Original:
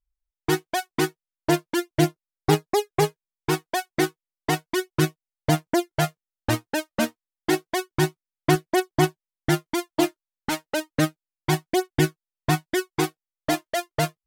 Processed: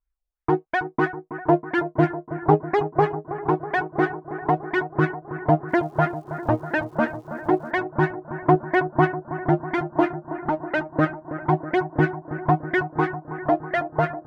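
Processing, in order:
auto-filter low-pass sine 3 Hz 540–1,900 Hz
0:05.68–0:07.70: surface crackle 520 per second −50 dBFS
bucket-brigade delay 323 ms, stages 4,096, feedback 75%, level −12.5 dB

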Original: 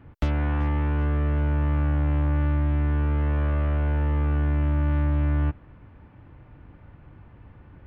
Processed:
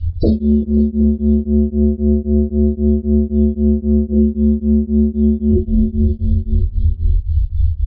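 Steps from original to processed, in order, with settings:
parametric band 340 Hz −4.5 dB 2.2 octaves, from 0:04.12 −11.5 dB
inverse Chebyshev band-stop filter 150–2,400 Hz, stop band 40 dB
sine wavefolder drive 14 dB, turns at −19 dBFS
spectral peaks only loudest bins 32
high-frequency loss of the air 94 metres
repeating echo 523 ms, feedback 28%, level −16 dB
coupled-rooms reverb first 0.41 s, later 2 s, DRR −7 dB
boost into a limiter +20.5 dB
tremolo along a rectified sine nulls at 3.8 Hz
level −4 dB

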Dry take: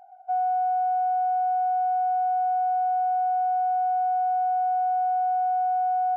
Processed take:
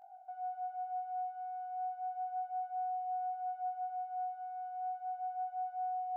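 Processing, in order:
brickwall limiter −30.5 dBFS, peak gain reduction 10 dB
chorus effect 0.33 Hz, delay 20 ms, depth 8 ms
feedback delay with all-pass diffusion 477 ms, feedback 48%, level −10 dB
level −3.5 dB

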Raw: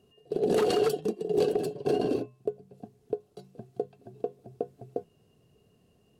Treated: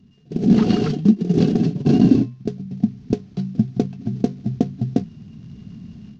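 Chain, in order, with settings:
variable-slope delta modulation 32 kbit/s
low shelf with overshoot 320 Hz +13 dB, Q 3
automatic gain control gain up to 13.5 dB
level −1 dB

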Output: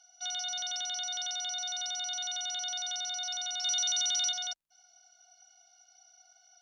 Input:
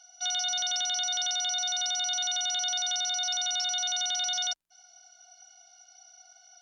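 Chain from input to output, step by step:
0:03.64–0:04.32: spectral tilt +3 dB per octave
level −6 dB

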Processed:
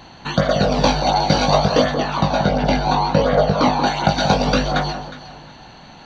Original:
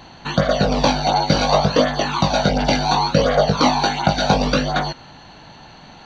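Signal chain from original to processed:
0:01.94–0:03.87: low-pass filter 2,500 Hz 6 dB per octave
delay that swaps between a low-pass and a high-pass 181 ms, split 1,200 Hz, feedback 50%, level −8 dB

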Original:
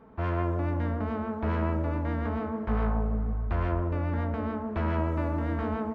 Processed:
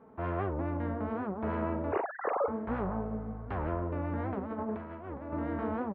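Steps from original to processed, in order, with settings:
0:01.92–0:02.48: three sine waves on the formant tracks
high-pass filter 230 Hz 6 dB per octave
high-shelf EQ 2,200 Hz −9 dB
0:04.40–0:05.34: compressor whose output falls as the input rises −37 dBFS, ratio −0.5
high-frequency loss of the air 210 metres
double-tracking delay 45 ms −11 dB
wow of a warped record 78 rpm, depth 250 cents

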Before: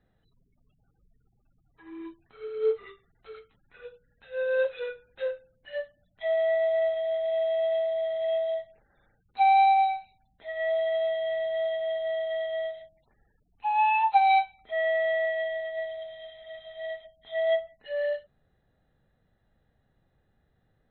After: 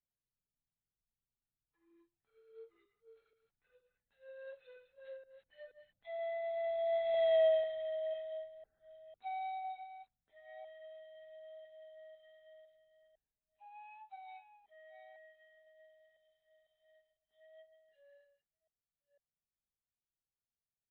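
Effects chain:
delay that plays each chunk backwards 489 ms, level −9 dB
source passing by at 0:07.31, 9 m/s, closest 1.6 metres

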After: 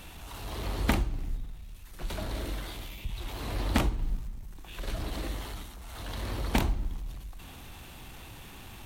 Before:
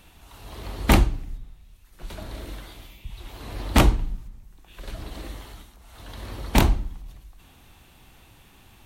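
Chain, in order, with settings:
mu-law and A-law mismatch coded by mu
downward compressor 16 to 1, threshold −22 dBFS, peak gain reduction 13 dB

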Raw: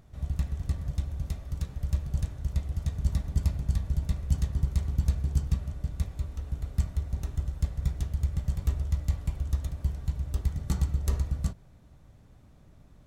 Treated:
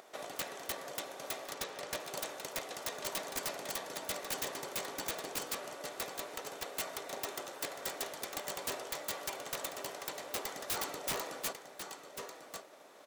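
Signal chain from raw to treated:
phase distortion by the signal itself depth 0.084 ms
high-pass filter 420 Hz 24 dB per octave
transient designer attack +7 dB, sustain +2 dB
wave folding −36 dBFS
0:01.54–0:02.00: low-pass filter 6,600 Hz
single-tap delay 1,095 ms −10 dB
wrap-around overflow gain 39 dB
level +10 dB

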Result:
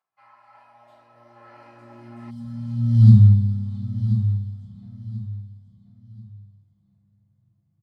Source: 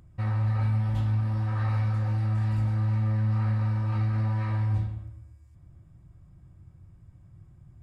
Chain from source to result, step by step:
source passing by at 0:03.04, 28 m/s, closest 1.6 metres
rectangular room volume 240 cubic metres, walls furnished, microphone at 6.6 metres
gain on a spectral selection 0:02.30–0:04.82, 250–3,000 Hz −26 dB
high-pass filter sweep 970 Hz → 150 Hz, 0:00.32–0:03.02
repeating echo 1,035 ms, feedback 29%, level −11 dB
level +5 dB

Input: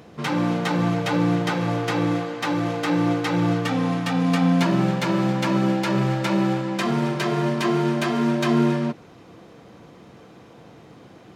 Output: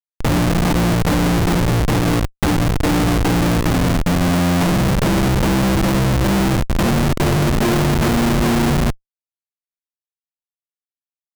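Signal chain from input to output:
comparator with hysteresis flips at −20 dBFS
level +7.5 dB

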